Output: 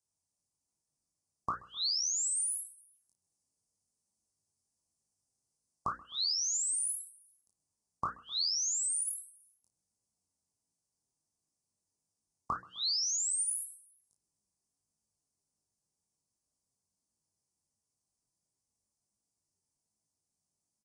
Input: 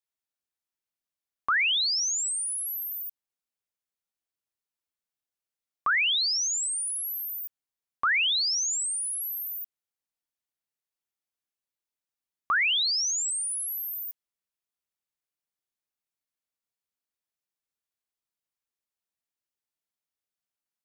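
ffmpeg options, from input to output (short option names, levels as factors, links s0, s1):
-filter_complex "[0:a]asettb=1/sr,asplit=3[s0][s1][s2];[s0]atrim=end=2.944[s3];[s1]atrim=start=2.94:end=5.95,asetpts=PTS-STARTPTS,afade=t=in:d=0.004:c=qsin,afade=t=out:st=3.006:d=0.004:c=qsin,highshelf=f=4600:g=3.5[s4];[s2]atrim=start=5.946[s5];[s3][s4]acrossfade=d=0.004:c1=hsin:c2=qsin[s6];[s6][s5]acrossfade=d=0.004:c1=qsin:c2=hsin,aecho=1:1:129|258|387:0.0631|0.0328|0.0171,flanger=delay=18:depth=4.9:speed=1.4,asuperstop=centerf=2300:order=8:qfactor=0.61,bass=f=250:g=14,treble=f=4000:g=7,bandreject=f=60:t=h:w=6,bandreject=f=120:t=h:w=6,bandreject=f=180:t=h:w=6,bandreject=f=240:t=h:w=6,bandreject=f=300:t=h:w=6,bandreject=f=360:t=h:w=6,bandreject=f=420:t=h:w=6,bandreject=f=480:t=h:w=6,bandreject=f=540:t=h:w=6,asplit=2[s7][s8];[s8]adelay=33,volume=0.355[s9];[s7][s9]amix=inputs=2:normalize=0,alimiter=limit=0.0944:level=0:latency=1:release=54,highpass=f=87:p=1,acompressor=threshold=0.0178:ratio=16,volume=1.88" -ar 22050 -c:a aac -b:a 32k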